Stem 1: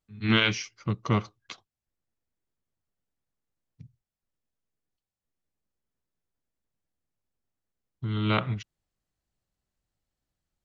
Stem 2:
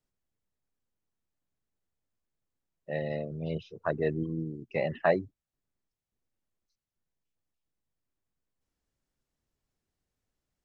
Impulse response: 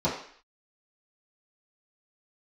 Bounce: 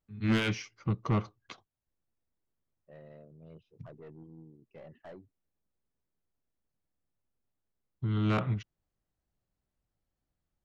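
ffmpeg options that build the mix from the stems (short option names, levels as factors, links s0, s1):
-filter_complex "[0:a]asoftclip=type=tanh:threshold=0.0944,volume=1.06[s0];[1:a]aeval=exprs='(tanh(22.4*val(0)+0.25)-tanh(0.25))/22.4':c=same,volume=0.158[s1];[s0][s1]amix=inputs=2:normalize=0,highshelf=f=2200:g=-10.5"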